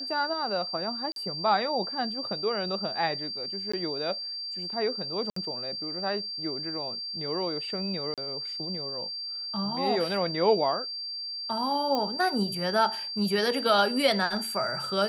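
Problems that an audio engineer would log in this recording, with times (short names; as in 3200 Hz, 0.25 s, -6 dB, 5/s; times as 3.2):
tone 4700 Hz -33 dBFS
1.12–1.16 gap 42 ms
3.72–3.73 gap 15 ms
5.3–5.36 gap 64 ms
8.14–8.18 gap 37 ms
11.95 pop -16 dBFS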